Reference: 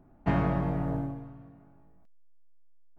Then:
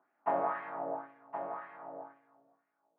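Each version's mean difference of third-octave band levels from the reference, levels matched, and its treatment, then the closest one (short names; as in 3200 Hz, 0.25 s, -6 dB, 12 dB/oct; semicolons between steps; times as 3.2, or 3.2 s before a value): 9.5 dB: LFO band-pass sine 2 Hz 570–2100 Hz; BPF 290–3700 Hz; dynamic EQ 1100 Hz, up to +5 dB, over -52 dBFS, Q 1.1; echo 1.068 s -8 dB; gain +2.5 dB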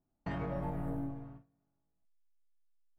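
4.0 dB: limiter -22.5 dBFS, peak gain reduction 8 dB; spectral noise reduction 13 dB; gate with hold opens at -47 dBFS; compressor 2:1, threshold -46 dBFS, peak gain reduction 4.5 dB; gain +9.5 dB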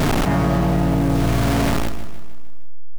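17.5 dB: zero-crossing step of -34 dBFS; in parallel at -4.5 dB: requantised 6-bit, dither none; on the sum: feedback echo 0.154 s, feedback 56%, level -11.5 dB; fast leveller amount 100%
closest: second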